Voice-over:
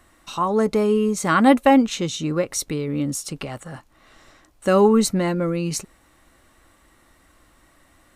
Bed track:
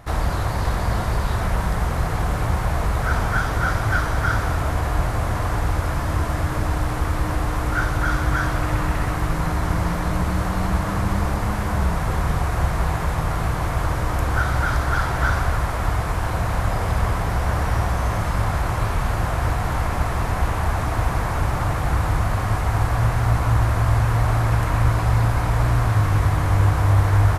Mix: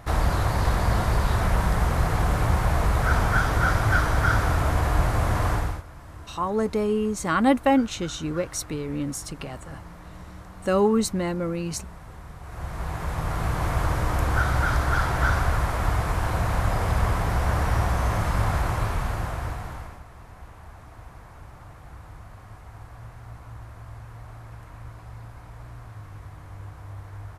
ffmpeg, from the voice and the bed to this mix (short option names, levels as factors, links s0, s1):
-filter_complex "[0:a]adelay=6000,volume=0.562[s0];[1:a]volume=7.94,afade=t=out:st=5.5:d=0.33:silence=0.1,afade=t=in:st=12.4:d=1.3:silence=0.11885,afade=t=out:st=18.56:d=1.46:silence=0.0891251[s1];[s0][s1]amix=inputs=2:normalize=0"